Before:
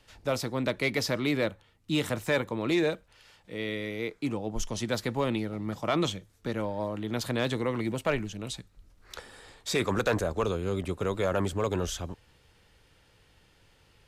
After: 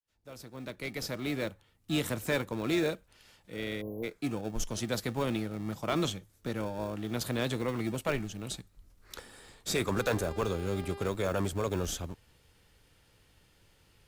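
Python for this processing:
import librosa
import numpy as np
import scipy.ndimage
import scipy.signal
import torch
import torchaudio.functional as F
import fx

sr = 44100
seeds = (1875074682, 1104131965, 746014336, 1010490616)

p1 = fx.fade_in_head(x, sr, length_s=1.93)
p2 = fx.high_shelf(p1, sr, hz=8700.0, db=11.0)
p3 = fx.sample_hold(p2, sr, seeds[0], rate_hz=1000.0, jitter_pct=0)
p4 = p2 + F.gain(torch.from_numpy(p3), -10.5).numpy()
p5 = fx.spec_erase(p4, sr, start_s=3.81, length_s=0.22, low_hz=1100.0, high_hz=11000.0)
p6 = fx.dmg_buzz(p5, sr, base_hz=400.0, harmonics=13, level_db=-41.0, tilt_db=-7, odd_only=False, at=(9.95, 11.07), fade=0.02)
y = F.gain(torch.from_numpy(p6), -4.0).numpy()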